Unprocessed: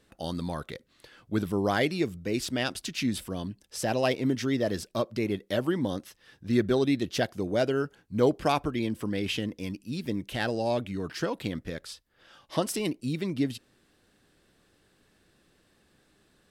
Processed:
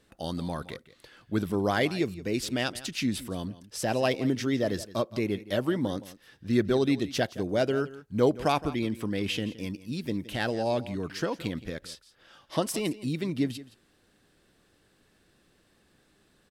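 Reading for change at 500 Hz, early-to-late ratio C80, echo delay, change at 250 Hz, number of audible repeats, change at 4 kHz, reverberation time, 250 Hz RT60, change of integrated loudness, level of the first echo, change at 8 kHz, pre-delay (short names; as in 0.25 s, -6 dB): 0.0 dB, none, 0.169 s, 0.0 dB, 1, 0.0 dB, none, none, 0.0 dB, -17.0 dB, 0.0 dB, none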